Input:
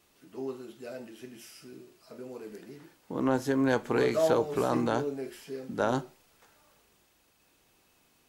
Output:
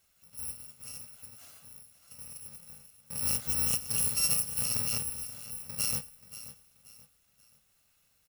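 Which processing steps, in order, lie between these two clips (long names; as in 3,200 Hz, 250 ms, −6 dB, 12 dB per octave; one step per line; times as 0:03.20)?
samples in bit-reversed order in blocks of 128 samples
repeating echo 531 ms, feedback 34%, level −14.5 dB
level −3.5 dB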